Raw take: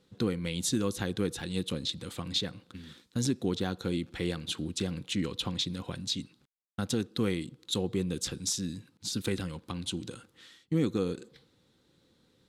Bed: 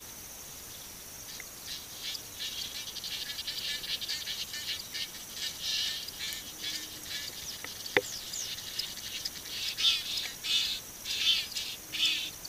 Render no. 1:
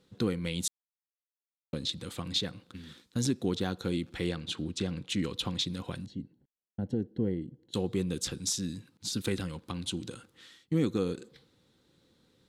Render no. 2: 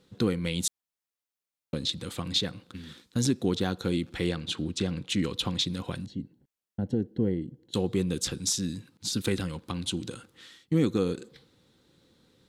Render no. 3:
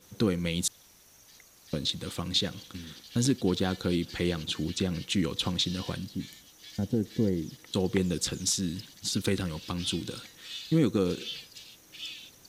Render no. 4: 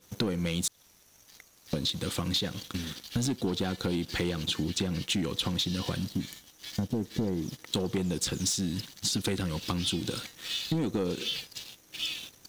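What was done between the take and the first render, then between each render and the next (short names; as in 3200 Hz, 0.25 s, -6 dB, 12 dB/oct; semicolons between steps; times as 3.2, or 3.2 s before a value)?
0.68–1.73 mute; 4.29–5.1 air absorption 50 m; 6.06–7.74 running mean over 36 samples
gain +3.5 dB
add bed -12 dB
sample leveller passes 2; compressor, threshold -27 dBFS, peak gain reduction 10.5 dB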